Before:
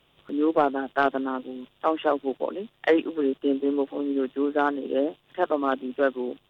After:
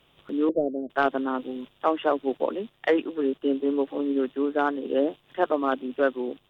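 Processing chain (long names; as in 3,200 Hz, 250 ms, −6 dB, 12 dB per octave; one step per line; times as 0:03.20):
0:00.49–0:00.90: elliptic low-pass filter 610 Hz, stop band 40 dB
speech leveller within 3 dB 0.5 s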